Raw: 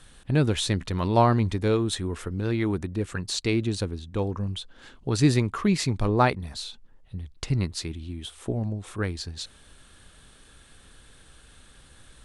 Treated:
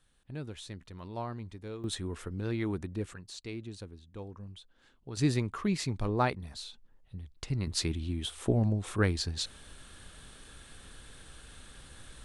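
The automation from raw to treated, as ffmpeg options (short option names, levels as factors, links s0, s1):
-af "asetnsamples=n=441:p=0,asendcmd='1.84 volume volume -7dB;3.14 volume volume -16dB;5.17 volume volume -7.5dB;7.67 volume volume 1.5dB',volume=0.119"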